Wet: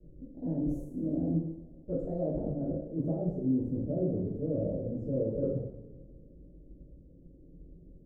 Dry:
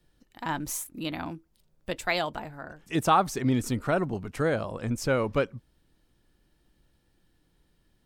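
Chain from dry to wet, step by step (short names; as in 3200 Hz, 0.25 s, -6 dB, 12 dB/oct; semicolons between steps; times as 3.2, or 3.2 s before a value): rattling part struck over -40 dBFS, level -17 dBFS; in parallel at +3 dB: vocal rider; on the sum: limiter -13.5 dBFS, peak gain reduction 10 dB; elliptic low-pass 550 Hz, stop band 50 dB; reverse; compressor 6:1, threshold -37 dBFS, peak gain reduction 17 dB; reverse; two-slope reverb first 0.67 s, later 2.2 s, DRR -7.5 dB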